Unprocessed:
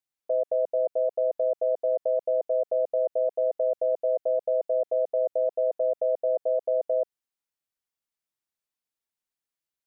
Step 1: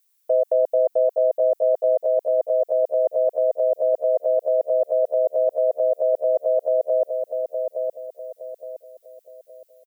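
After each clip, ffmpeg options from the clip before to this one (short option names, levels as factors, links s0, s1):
-filter_complex "[0:a]highpass=f=420:p=1,aemphasis=mode=production:type=75kf,asplit=2[s0][s1];[s1]adelay=866,lowpass=f=800:p=1,volume=0.631,asplit=2[s2][s3];[s3]adelay=866,lowpass=f=800:p=1,volume=0.42,asplit=2[s4][s5];[s5]adelay=866,lowpass=f=800:p=1,volume=0.42,asplit=2[s6][s7];[s7]adelay=866,lowpass=f=800:p=1,volume=0.42,asplit=2[s8][s9];[s9]adelay=866,lowpass=f=800:p=1,volume=0.42[s10];[s2][s4][s6][s8][s10]amix=inputs=5:normalize=0[s11];[s0][s11]amix=inputs=2:normalize=0,volume=2.51"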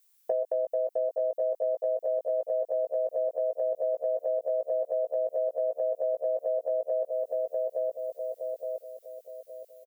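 -filter_complex "[0:a]acompressor=threshold=0.0398:ratio=5,asplit=2[s0][s1];[s1]adelay=17,volume=0.473[s2];[s0][s2]amix=inputs=2:normalize=0"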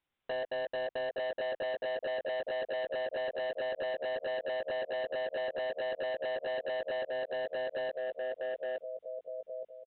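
-af "aemphasis=mode=reproduction:type=riaa,aresample=8000,asoftclip=type=hard:threshold=0.0224,aresample=44100"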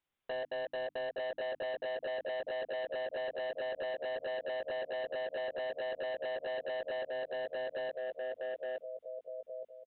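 -af "bandreject=f=50:t=h:w=6,bandreject=f=100:t=h:w=6,bandreject=f=150:t=h:w=6,bandreject=f=200:t=h:w=6,bandreject=f=250:t=h:w=6,bandreject=f=300:t=h:w=6,volume=0.75"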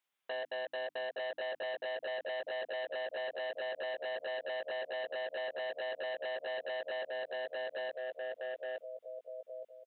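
-af "highpass=f=830:p=1,volume=1.41"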